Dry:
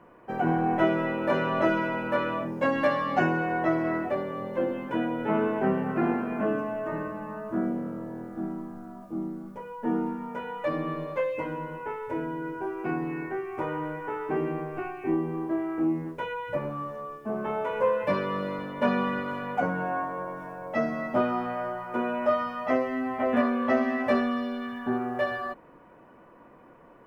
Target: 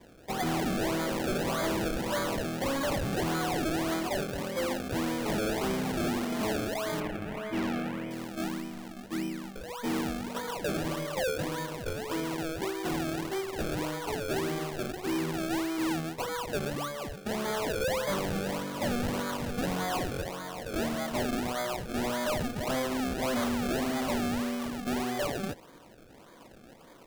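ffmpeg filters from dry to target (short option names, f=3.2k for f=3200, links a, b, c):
-filter_complex "[0:a]acrusher=samples=31:mix=1:aa=0.000001:lfo=1:lforange=31:lforate=1.7,asettb=1/sr,asplit=3[a][b][c];[a]atrim=end=7.004[d];[b]atrim=start=7:end=8.11,asetpts=PTS-STARTPTS,afade=t=in:d=0.004:c=qsin,afade=t=out:st=1.106:d=0.004:c=qsin,highshelf=f=3.4k:t=q:w=1.5:g=-9[e];[c]atrim=start=8.106[f];[d][e]acrossfade=d=0.004:c1=hsin:c2=qsin[g];[g][f]acrossfade=d=0.004:c1=qsin:c2=hsin,asoftclip=type=hard:threshold=-27.5dB"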